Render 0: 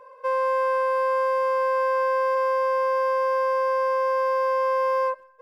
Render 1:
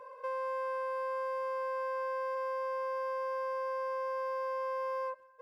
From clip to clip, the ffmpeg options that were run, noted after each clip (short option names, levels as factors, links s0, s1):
-af "highpass=54,acompressor=threshold=0.00794:ratio=2,volume=0.841"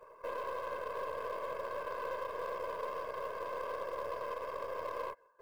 -af "afftfilt=real='hypot(re,im)*cos(2*PI*random(0))':imag='hypot(re,im)*sin(2*PI*random(1))':win_size=512:overlap=0.75,aeval=exprs='0.0355*(cos(1*acos(clip(val(0)/0.0355,-1,1)))-cos(1*PI/2))+0.00126*(cos(3*acos(clip(val(0)/0.0355,-1,1)))-cos(3*PI/2))+0.00126*(cos(7*acos(clip(val(0)/0.0355,-1,1)))-cos(7*PI/2))+0.00141*(cos(8*acos(clip(val(0)/0.0355,-1,1)))-cos(8*PI/2))':c=same,acrusher=bits=7:mode=log:mix=0:aa=0.000001,volume=1.41"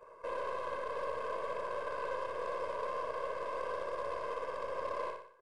-af "aecho=1:1:60|120|180|240|300|360:0.562|0.253|0.114|0.0512|0.0231|0.0104,aresample=22050,aresample=44100"